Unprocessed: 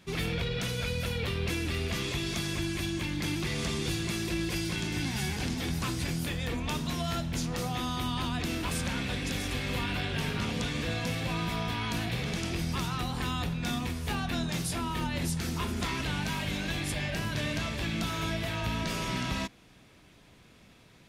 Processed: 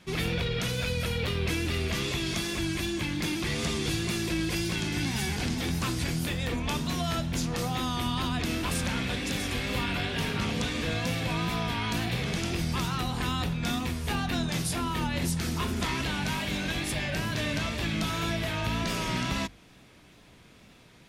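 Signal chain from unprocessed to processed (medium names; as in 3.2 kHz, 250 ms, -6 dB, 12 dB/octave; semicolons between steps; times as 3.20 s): wow and flutter 45 cents; hum notches 50/100/150 Hz; trim +2.5 dB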